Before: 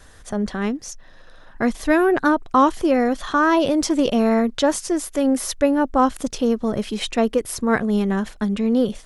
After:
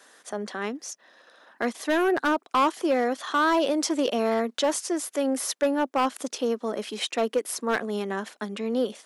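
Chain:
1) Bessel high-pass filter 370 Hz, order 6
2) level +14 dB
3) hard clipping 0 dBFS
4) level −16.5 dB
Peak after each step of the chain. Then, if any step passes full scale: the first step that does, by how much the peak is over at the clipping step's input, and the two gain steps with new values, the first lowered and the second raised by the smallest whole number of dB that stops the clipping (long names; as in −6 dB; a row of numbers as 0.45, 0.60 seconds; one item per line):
−5.5, +8.5, 0.0, −16.5 dBFS
step 2, 8.5 dB
step 2 +5 dB, step 4 −7.5 dB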